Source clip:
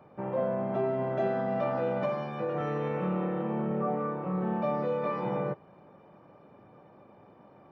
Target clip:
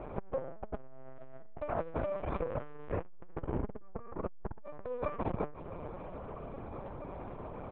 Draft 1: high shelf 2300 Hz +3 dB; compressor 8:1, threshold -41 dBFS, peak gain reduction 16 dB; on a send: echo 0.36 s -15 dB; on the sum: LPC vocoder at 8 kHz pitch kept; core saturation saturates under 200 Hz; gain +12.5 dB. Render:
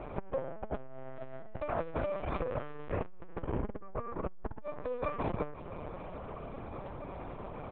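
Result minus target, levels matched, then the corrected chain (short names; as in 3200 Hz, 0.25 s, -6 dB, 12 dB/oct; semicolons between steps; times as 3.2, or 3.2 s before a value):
2000 Hz band +3.0 dB
high shelf 2300 Hz -6.5 dB; compressor 8:1, threshold -41 dBFS, peak gain reduction 15.5 dB; on a send: echo 0.36 s -15 dB; on the sum: LPC vocoder at 8 kHz pitch kept; core saturation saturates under 200 Hz; gain +12.5 dB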